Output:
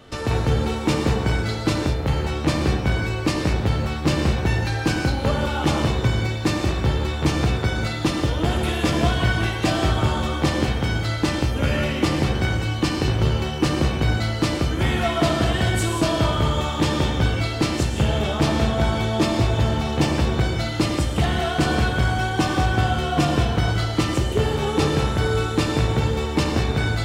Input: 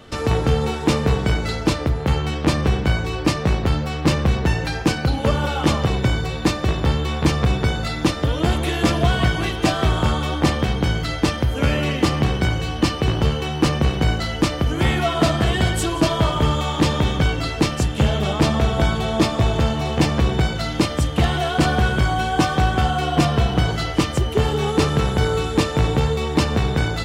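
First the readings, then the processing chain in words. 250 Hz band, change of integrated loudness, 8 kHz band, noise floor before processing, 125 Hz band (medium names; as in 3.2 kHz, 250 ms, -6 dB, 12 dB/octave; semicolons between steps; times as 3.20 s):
-1.5 dB, -1.5 dB, -1.5 dB, -27 dBFS, -1.5 dB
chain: gated-style reverb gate 230 ms flat, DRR 2 dB; trim -3.5 dB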